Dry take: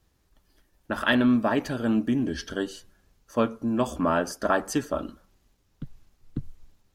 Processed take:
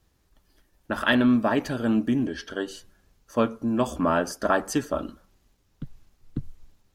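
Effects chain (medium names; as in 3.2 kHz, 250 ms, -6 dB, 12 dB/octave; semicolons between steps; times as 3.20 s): 2.27–2.68 s: tone controls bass -9 dB, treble -7 dB; trim +1 dB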